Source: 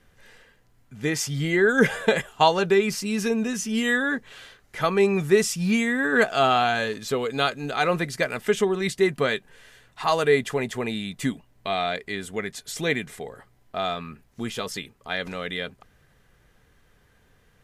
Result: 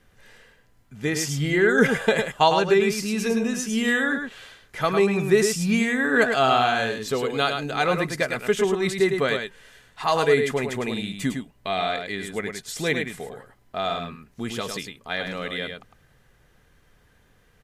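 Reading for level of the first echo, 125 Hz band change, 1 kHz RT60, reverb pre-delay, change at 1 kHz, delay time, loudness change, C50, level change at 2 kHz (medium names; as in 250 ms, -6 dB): -6.0 dB, +1.0 dB, no reverb, no reverb, +1.0 dB, 105 ms, +1.0 dB, no reverb, +1.0 dB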